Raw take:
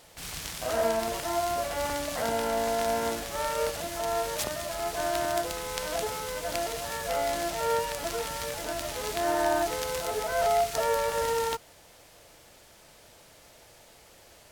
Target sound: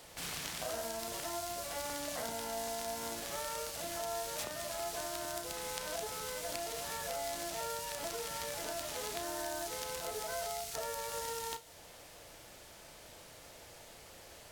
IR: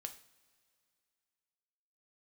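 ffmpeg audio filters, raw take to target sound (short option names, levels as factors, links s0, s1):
-filter_complex "[0:a]acrossover=split=140|3700[s0][s1][s2];[s0]acompressor=threshold=0.001:ratio=4[s3];[s1]acompressor=threshold=0.00891:ratio=4[s4];[s2]acompressor=threshold=0.00794:ratio=4[s5];[s3][s4][s5]amix=inputs=3:normalize=0,asplit=2[s6][s7];[1:a]atrim=start_sample=2205,adelay=34[s8];[s7][s8]afir=irnorm=-1:irlink=0,volume=0.501[s9];[s6][s9]amix=inputs=2:normalize=0"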